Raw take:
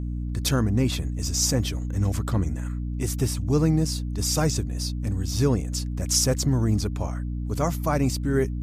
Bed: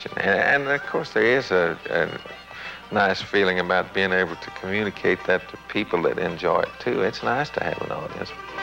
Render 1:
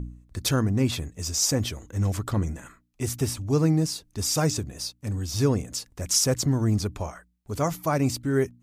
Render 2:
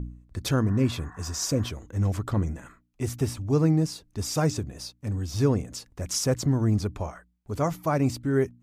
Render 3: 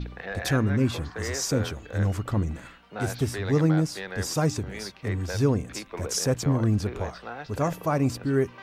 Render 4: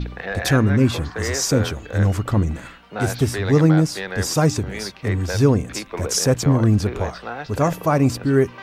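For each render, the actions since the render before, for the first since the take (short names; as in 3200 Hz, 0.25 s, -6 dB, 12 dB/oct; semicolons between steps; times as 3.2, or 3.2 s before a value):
de-hum 60 Hz, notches 5
0.69–1.68 spectral repair 710–2000 Hz before; high shelf 3100 Hz -8 dB
add bed -15 dB
gain +7 dB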